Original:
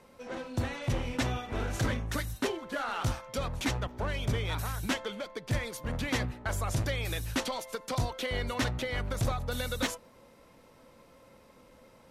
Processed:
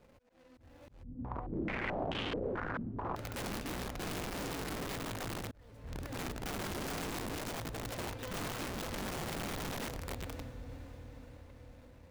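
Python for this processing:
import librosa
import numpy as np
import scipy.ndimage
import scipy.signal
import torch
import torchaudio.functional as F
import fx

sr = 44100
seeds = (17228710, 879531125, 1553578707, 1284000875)

y = scipy.signal.medfilt(x, 41)
y = fx.echo_diffused(y, sr, ms=520, feedback_pct=54, wet_db=-8.5)
y = 10.0 ** (-33.0 / 20.0) * np.tanh(y / 10.0 ** (-33.0 / 20.0))
y = fx.rev_fdn(y, sr, rt60_s=1.6, lf_ratio=1.2, hf_ratio=0.5, size_ms=20.0, drr_db=10.5)
y = fx.auto_swell(y, sr, attack_ms=796.0)
y = fx.peak_eq(y, sr, hz=280.0, db=-8.0, octaves=2.8)
y = (np.mod(10.0 ** (38.0 / 20.0) * y + 1.0, 2.0) - 1.0) / 10.0 ** (38.0 / 20.0)
y = fx.filter_held_lowpass(y, sr, hz=4.6, low_hz=230.0, high_hz=3100.0, at=(1.03, 3.16))
y = F.gain(torch.from_numpy(y), 3.0).numpy()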